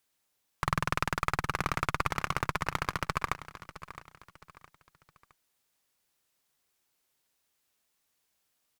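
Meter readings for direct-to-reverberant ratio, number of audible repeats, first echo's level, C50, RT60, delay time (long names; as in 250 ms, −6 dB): no reverb audible, 3, −14.5 dB, no reverb audible, no reverb audible, 664 ms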